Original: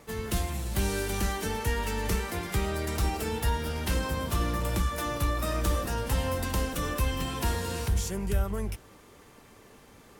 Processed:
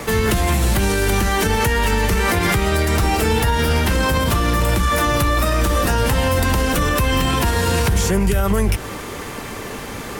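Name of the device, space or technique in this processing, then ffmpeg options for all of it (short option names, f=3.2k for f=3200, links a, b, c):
mastering chain: -filter_complex "[0:a]equalizer=f=1.9k:t=o:w=1.4:g=2.5,acrossover=split=130|2300[a][b][c];[a]acompressor=threshold=-34dB:ratio=4[d];[b]acompressor=threshold=-35dB:ratio=4[e];[c]acompressor=threshold=-43dB:ratio=4[f];[d][e][f]amix=inputs=3:normalize=0,acompressor=threshold=-36dB:ratio=2.5,asoftclip=type=hard:threshold=-27dB,alimiter=level_in=31dB:limit=-1dB:release=50:level=0:latency=1,volume=-7.5dB"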